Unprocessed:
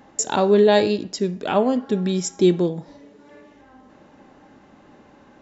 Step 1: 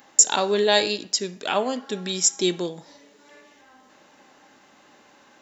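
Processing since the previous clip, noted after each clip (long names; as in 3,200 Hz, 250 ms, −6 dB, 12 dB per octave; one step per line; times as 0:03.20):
spectral tilt +4 dB per octave
level −1.5 dB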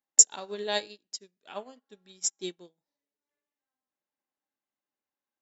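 expander for the loud parts 2.5 to 1, over −38 dBFS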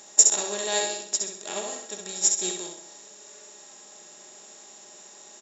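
compressor on every frequency bin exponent 0.4
on a send: repeating echo 65 ms, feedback 40%, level −5 dB
on the sum: level −1 dB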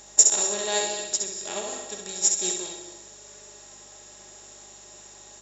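mains hum 50 Hz, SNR 34 dB
reverb whose tail is shaped and stops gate 270 ms rising, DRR 8.5 dB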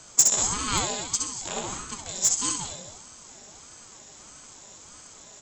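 in parallel at −9 dB: wrap-around overflow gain 11.5 dB
on the sum: ring modulator whose carrier an LFO sweeps 430 Hz, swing 60%, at 1.6 Hz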